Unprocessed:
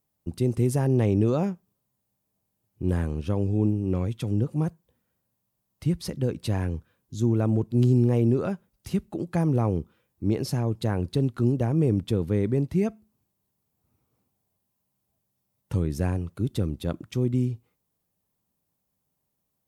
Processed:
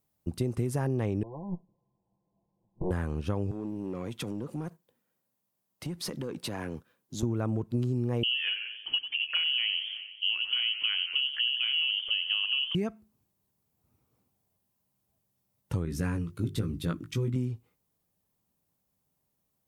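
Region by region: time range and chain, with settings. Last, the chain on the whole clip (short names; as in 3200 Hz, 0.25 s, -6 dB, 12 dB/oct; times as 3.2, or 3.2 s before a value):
1.23–2.91 minimum comb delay 5.9 ms + negative-ratio compressor -35 dBFS + brick-wall FIR low-pass 1100 Hz
3.51–7.23 HPF 200 Hz + compressor 12:1, threshold -33 dBFS + sample leveller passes 1
8.23–12.75 air absorption 410 m + inverted band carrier 3100 Hz + warbling echo 90 ms, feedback 62%, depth 89 cents, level -13 dB
15.85–17.36 bell 690 Hz -13 dB 0.83 oct + notches 50/100/150/200/250/300/350/400 Hz + doubler 18 ms -5 dB
whole clip: dynamic EQ 1300 Hz, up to +7 dB, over -47 dBFS, Q 1; compressor, threshold -26 dBFS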